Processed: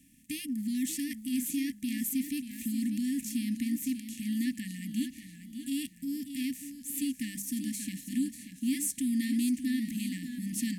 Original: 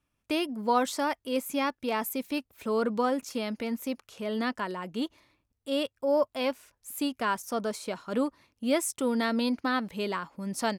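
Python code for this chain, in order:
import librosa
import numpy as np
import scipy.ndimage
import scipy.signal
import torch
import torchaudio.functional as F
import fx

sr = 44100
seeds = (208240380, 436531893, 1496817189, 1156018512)

y = fx.bin_compress(x, sr, power=0.6)
y = fx.brickwall_bandstop(y, sr, low_hz=300.0, high_hz=1700.0)
y = fx.band_shelf(y, sr, hz=2100.0, db=-10.0, octaves=2.8)
y = fx.hum_notches(y, sr, base_hz=50, count=4)
y = fx.echo_warbled(y, sr, ms=588, feedback_pct=37, rate_hz=2.8, cents=86, wet_db=-10)
y = y * 10.0 ** (-1.0 / 20.0)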